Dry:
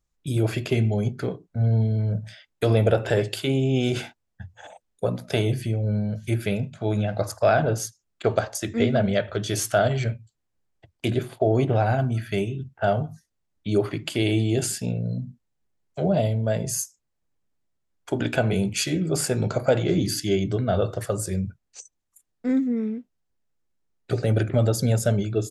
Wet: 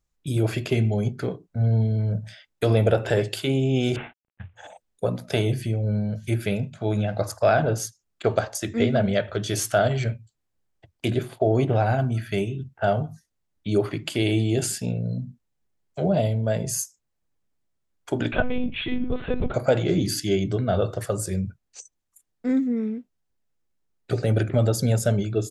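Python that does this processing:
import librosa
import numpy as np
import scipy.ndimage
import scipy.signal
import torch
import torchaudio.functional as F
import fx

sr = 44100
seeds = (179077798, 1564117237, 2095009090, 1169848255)

y = fx.cvsd(x, sr, bps=16000, at=(3.96, 4.56))
y = fx.lpc_monotone(y, sr, seeds[0], pitch_hz=250.0, order=10, at=(18.32, 19.54))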